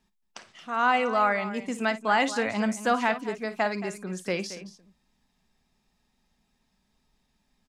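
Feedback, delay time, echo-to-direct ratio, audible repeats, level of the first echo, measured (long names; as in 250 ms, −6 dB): repeats not evenly spaced, 54 ms, −11.0 dB, 2, −14.5 dB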